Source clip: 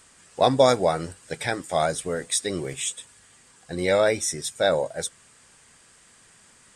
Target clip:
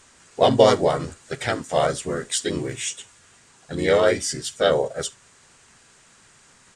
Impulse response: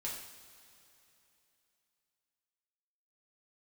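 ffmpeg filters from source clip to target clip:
-filter_complex "[0:a]highshelf=f=11k:g=-8.5,asplit=2[a][b];[b]asetrate=37084,aresample=44100,atempo=1.18921,volume=-1dB[c];[a][c]amix=inputs=2:normalize=0,asplit=2[d][e];[1:a]atrim=start_sample=2205,atrim=end_sample=3528[f];[e][f]afir=irnorm=-1:irlink=0,volume=-14dB[g];[d][g]amix=inputs=2:normalize=0,volume=-1dB"

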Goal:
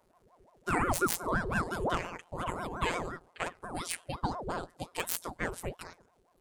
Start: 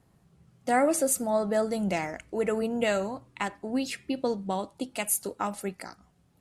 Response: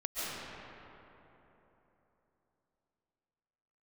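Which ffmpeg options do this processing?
-filter_complex "[0:a]asettb=1/sr,asplit=3[a][b][c];[a]atrim=end=3.624[d];[b]atrim=start=3.62:end=4.12,asetpts=PTS-STARTPTS,afade=t=in:d=0.004:c=qsin,afade=t=out:st=0.496:d=0.004:c=qsin,equalizer=f=9.5k:t=o:w=0.3:g=13.5[e];[c]atrim=start=4.116[f];[d][e]acrossfade=d=0.004:c1=hsin:c2=qsin[g];[g][f]acrossfade=d=0.004:c1=qsin:c2=hsin,acrossover=split=500|2000[h][i][j];[j]aeval=exprs='(mod(15*val(0)+1,2)-1)/15':c=same[k];[h][i][k]amix=inputs=3:normalize=0,afftfilt=real='hypot(re,im)*cos(PI*b)':imag='0':win_size=1024:overlap=0.75,aeval=exprs='val(0)*sin(2*PI*550*n/s+550*0.65/5.7*sin(2*PI*5.7*n/s))':c=same,volume=2.5dB"

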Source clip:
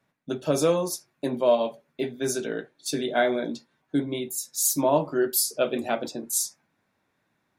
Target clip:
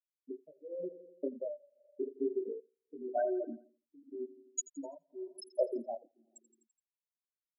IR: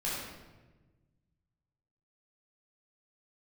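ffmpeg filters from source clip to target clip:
-af "flanger=delay=18:depth=4.6:speed=0.41,afwtdn=0.0158,acompressor=threshold=-32dB:ratio=6,afftfilt=real='re*gte(hypot(re,im),0.0891)':imag='im*gte(hypot(re,im),0.0891)':win_size=1024:overlap=0.75,aecho=1:1:84|168|252|336|420:0.112|0.0662|0.0391|0.023|0.0136,tremolo=f=0.89:d=0.97,highpass=530,equalizer=f=1.3k:t=o:w=1.4:g=-15,volume=13dB"

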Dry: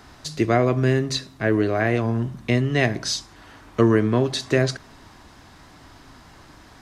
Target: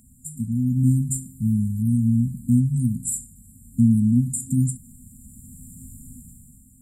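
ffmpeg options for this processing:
-af "bass=f=250:g=-7,treble=f=4k:g=5,dynaudnorm=f=110:g=13:m=12dB,afftfilt=real='re*(1-between(b*sr/4096,260,7100))':imag='im*(1-between(b*sr/4096,260,7100))':win_size=4096:overlap=0.75,volume=3dB"

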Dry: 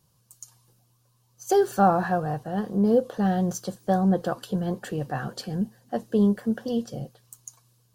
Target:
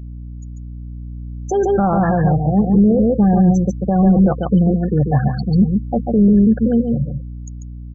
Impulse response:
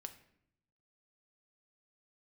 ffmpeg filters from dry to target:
-af "tremolo=f=160:d=0.261,afftfilt=real='re*gte(hypot(re,im),0.0562)':imag='im*gte(hypot(re,im),0.0562)':win_size=1024:overlap=0.75,aecho=1:1:142:0.531,aeval=exprs='val(0)+0.00708*(sin(2*PI*60*n/s)+sin(2*PI*2*60*n/s)/2+sin(2*PI*3*60*n/s)/3+sin(2*PI*4*60*n/s)/4+sin(2*PI*5*60*n/s)/5)':c=same,alimiter=limit=-20.5dB:level=0:latency=1:release=12,bass=f=250:g=8,treble=f=4k:g=-4,dynaudnorm=f=370:g=7:m=4dB,adynamicequalizer=threshold=0.01:dfrequency=1600:dqfactor=0.7:tfrequency=1600:tqfactor=0.7:attack=5:release=100:ratio=0.375:range=2.5:mode=cutabove:tftype=highshelf,volume=6dB"

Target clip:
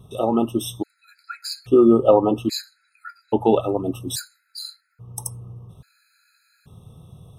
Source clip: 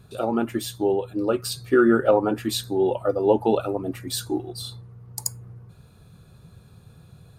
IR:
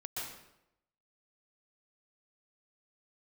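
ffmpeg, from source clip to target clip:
-filter_complex "[0:a]asettb=1/sr,asplit=3[a][b][c];[a]atrim=end=1.384[d];[b]atrim=start=1.38:end=3.75,asetpts=PTS-STARTPTS,afade=t=in:d=0.004:c=qsin,afade=t=out:st=2.366:d=0.004:c=qsin,highshelf=f=11k:g=-10.5[e];[c]atrim=start=3.746[f];[d][e]acrossfade=d=0.004:c1=hsin:c2=qsin[g];[g][f]acrossfade=d=0.004:c1=qsin:c2=hsin,afftfilt=real='re*gt(sin(2*PI*0.6*pts/sr)*(1-2*mod(floor(b*sr/1024/1300),2)),0)':imag='im*gt(sin(2*PI*0.6*pts/sr)*(1-2*mod(floor(b*sr/1024/1300),2)),0)':win_size=1024:overlap=0.75,volume=4dB"

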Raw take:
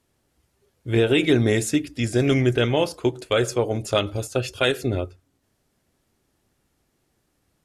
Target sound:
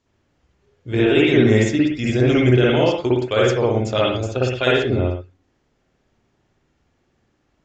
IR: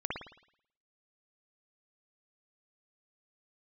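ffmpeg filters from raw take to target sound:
-filter_complex "[0:a]aresample=16000,aresample=44100[a];[1:a]atrim=start_sample=2205,afade=t=out:st=0.23:d=0.01,atrim=end_sample=10584,asetrate=42777,aresample=44100[b];[a][b]afir=irnorm=-1:irlink=0"

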